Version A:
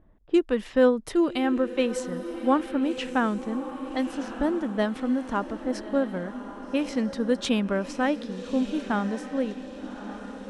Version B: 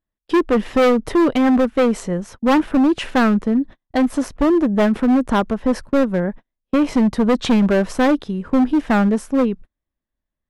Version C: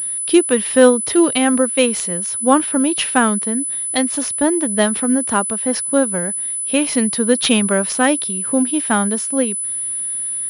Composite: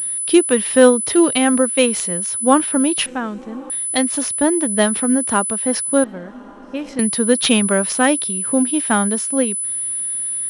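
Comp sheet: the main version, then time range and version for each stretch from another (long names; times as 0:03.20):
C
0:03.06–0:03.70: punch in from A
0:06.04–0:06.99: punch in from A
not used: B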